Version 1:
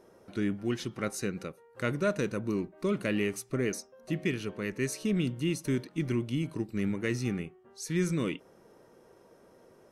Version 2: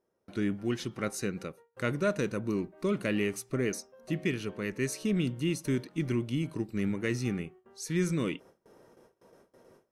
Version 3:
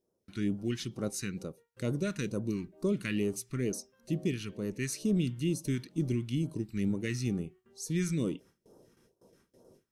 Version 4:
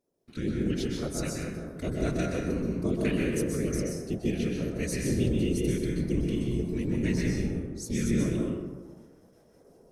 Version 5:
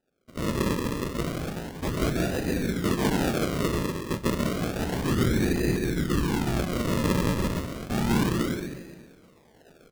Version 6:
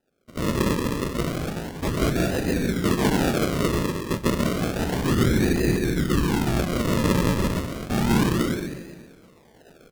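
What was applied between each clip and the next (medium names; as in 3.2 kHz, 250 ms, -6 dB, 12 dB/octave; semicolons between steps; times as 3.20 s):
gate with hold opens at -48 dBFS
phase shifter stages 2, 2.2 Hz, lowest notch 560–2100 Hz
whisper effect; plate-style reverb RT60 1.4 s, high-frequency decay 0.4×, pre-delay 115 ms, DRR -2 dB
decimation with a swept rate 40×, swing 100% 0.31 Hz; delay 307 ms -22 dB; trim +2.5 dB
vibrato 6.1 Hz 35 cents; trim +3.5 dB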